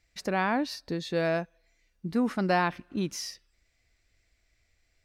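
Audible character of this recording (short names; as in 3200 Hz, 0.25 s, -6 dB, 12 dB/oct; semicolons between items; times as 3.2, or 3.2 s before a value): noise floor -73 dBFS; spectral tilt -5.0 dB/oct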